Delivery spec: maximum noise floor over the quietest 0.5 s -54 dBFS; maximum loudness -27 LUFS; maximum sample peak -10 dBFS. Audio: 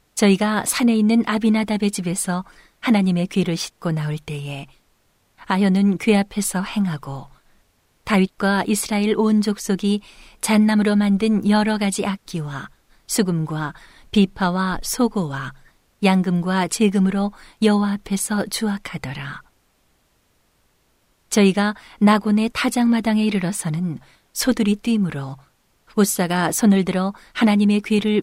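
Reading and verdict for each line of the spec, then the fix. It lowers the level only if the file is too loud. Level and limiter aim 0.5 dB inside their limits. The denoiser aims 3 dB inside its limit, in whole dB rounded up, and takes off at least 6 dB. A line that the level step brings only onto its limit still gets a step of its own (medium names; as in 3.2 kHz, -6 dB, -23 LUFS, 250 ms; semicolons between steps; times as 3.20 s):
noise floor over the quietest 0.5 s -63 dBFS: pass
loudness -20.0 LUFS: fail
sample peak -5.5 dBFS: fail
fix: trim -7.5 dB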